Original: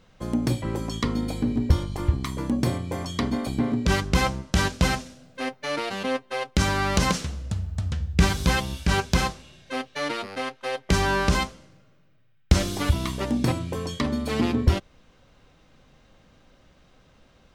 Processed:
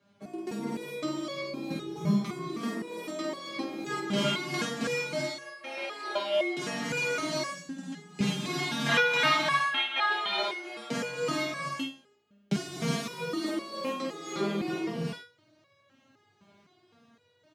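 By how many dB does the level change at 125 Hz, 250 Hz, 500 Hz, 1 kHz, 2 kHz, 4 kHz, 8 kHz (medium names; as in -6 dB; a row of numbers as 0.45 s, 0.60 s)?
-13.0 dB, -6.5 dB, -2.5 dB, -3.5 dB, -1.0 dB, -1.5 dB, -7.0 dB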